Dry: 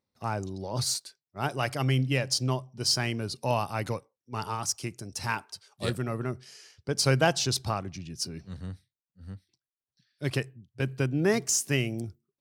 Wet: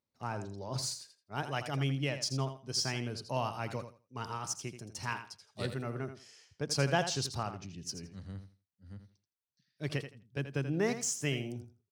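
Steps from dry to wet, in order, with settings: bell 11000 Hz -11 dB 0.41 oct; feedback echo 86 ms, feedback 20%, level -10 dB; speed mistake 24 fps film run at 25 fps; gain -6.5 dB

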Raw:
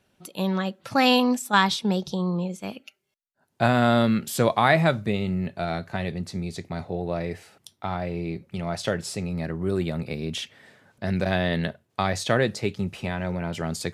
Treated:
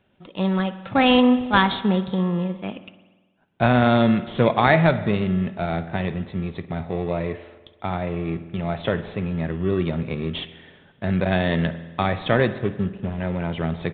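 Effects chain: 12.58–13.2 median filter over 41 samples; in parallel at -10.5 dB: sample-and-hold 29×; on the sum: downsampling 8000 Hz; spring tank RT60 1.3 s, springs 48 ms, chirp 30 ms, DRR 12.5 dB; gain +1.5 dB

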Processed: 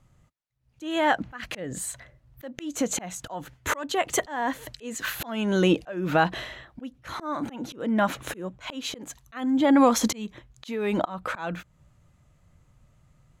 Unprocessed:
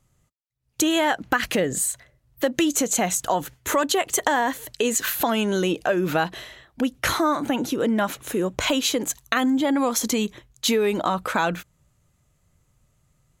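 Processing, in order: LPF 2500 Hz 6 dB/oct; bell 410 Hz -5 dB 0.36 oct; auto swell 0.487 s; gain +5.5 dB

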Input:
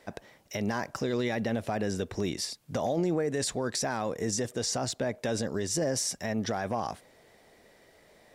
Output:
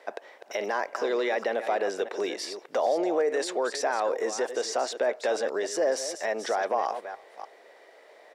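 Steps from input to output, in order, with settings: reverse delay 0.298 s, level -11 dB; HPF 420 Hz 24 dB/oct; speakerphone echo 0.33 s, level -27 dB; in parallel at -2 dB: limiter -26.5 dBFS, peak gain reduction 7.5 dB; on the sum: LPF 2000 Hz 6 dB/oct; gain +3 dB

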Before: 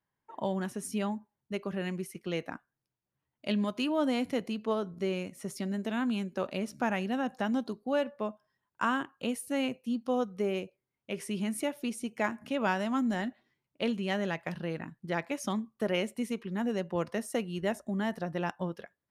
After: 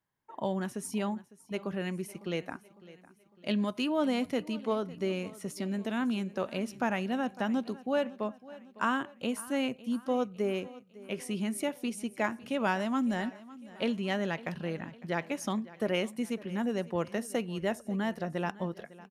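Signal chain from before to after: feedback echo 0.554 s, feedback 48%, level -19 dB

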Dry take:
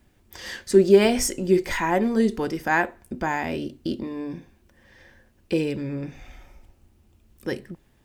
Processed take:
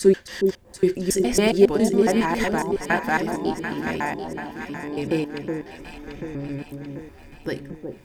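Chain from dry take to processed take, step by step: slices in reverse order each 0.138 s, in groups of 6; upward compressor, threshold -39 dBFS; echo with dull and thin repeats by turns 0.369 s, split 880 Hz, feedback 73%, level -5 dB

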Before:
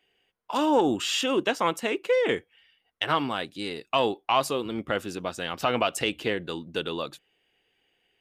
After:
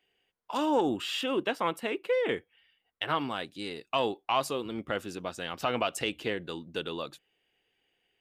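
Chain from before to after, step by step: 0.89–3.21 bell 6500 Hz -10 dB 0.66 oct; gain -4.5 dB

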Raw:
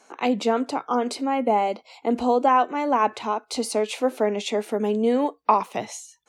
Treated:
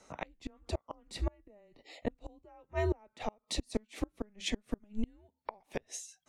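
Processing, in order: frequency shift -210 Hz; flipped gate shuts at -16 dBFS, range -34 dB; gain -5 dB

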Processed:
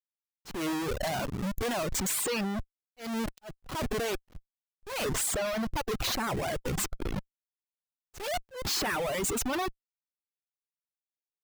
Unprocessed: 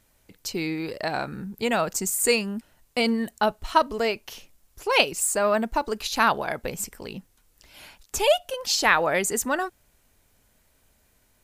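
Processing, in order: Schmitt trigger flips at -33 dBFS; auto swell 0.233 s; reverb removal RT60 1.7 s; gain -2 dB

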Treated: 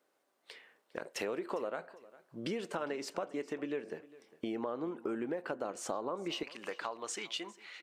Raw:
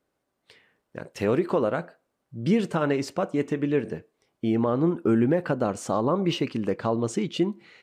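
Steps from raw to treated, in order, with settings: HPF 380 Hz 12 dB/oct, from 6.43 s 980 Hz; compressor 4:1, threshold -39 dBFS, peak gain reduction 15.5 dB; feedback echo 0.404 s, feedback 26%, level -20 dB; gain +2.5 dB

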